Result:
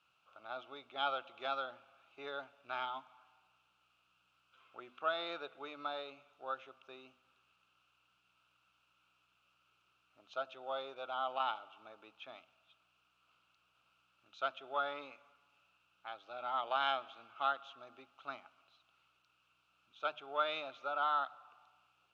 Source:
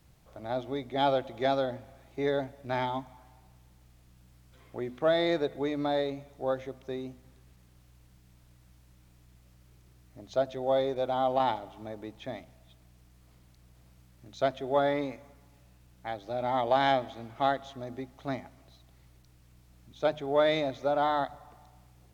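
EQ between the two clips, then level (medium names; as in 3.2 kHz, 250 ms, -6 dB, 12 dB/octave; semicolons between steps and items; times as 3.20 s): two resonant band-passes 1.9 kHz, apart 1 oct; +5.0 dB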